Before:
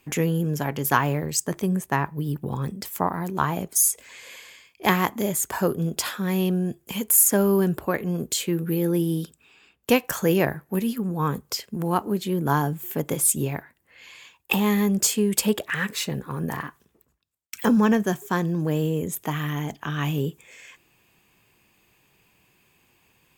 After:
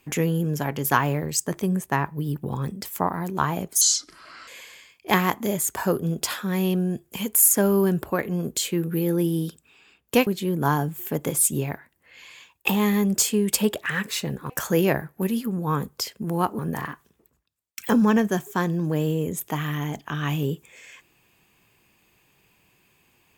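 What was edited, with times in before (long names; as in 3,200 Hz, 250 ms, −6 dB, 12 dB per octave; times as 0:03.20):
0:03.81–0:04.23: play speed 63%
0:10.02–0:12.11: move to 0:16.34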